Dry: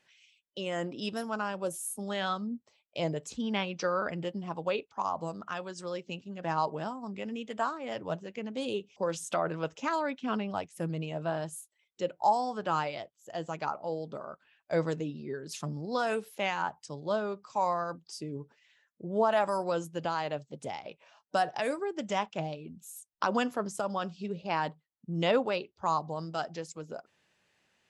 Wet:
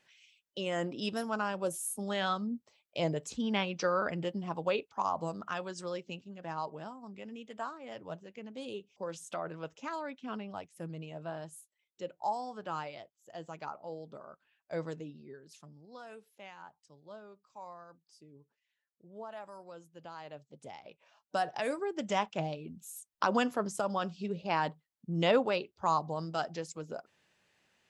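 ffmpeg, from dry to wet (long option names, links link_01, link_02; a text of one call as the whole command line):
ffmpeg -i in.wav -af "volume=18.5dB,afade=type=out:start_time=5.75:duration=0.72:silence=0.398107,afade=type=out:start_time=14.95:duration=0.72:silence=0.298538,afade=type=in:start_time=19.87:duration=0.97:silence=0.316228,afade=type=in:start_time=20.84:duration=1.3:silence=0.375837" out.wav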